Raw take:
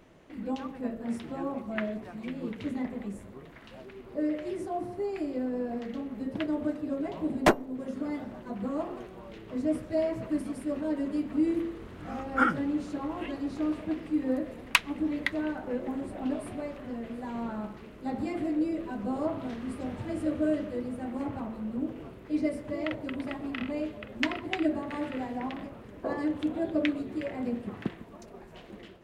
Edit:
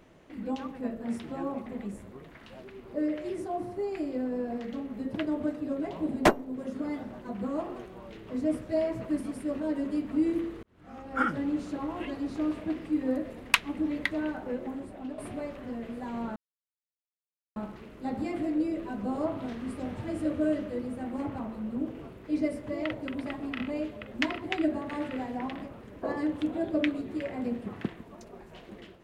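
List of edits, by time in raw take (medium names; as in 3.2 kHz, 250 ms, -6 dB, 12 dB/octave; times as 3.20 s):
1.66–2.87 s: delete
11.84–12.69 s: fade in
15.58–16.39 s: fade out linear, to -9 dB
17.57 s: insert silence 1.20 s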